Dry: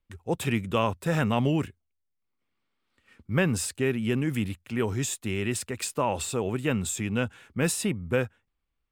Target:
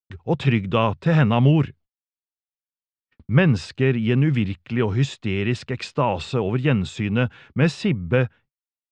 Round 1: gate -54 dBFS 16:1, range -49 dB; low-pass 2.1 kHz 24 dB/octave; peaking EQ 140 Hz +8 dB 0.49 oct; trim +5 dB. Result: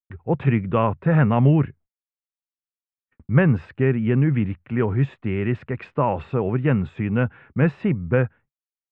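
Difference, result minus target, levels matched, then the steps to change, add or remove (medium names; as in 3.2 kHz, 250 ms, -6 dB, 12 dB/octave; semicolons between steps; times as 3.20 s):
4 kHz band -14.0 dB
change: low-pass 4.7 kHz 24 dB/octave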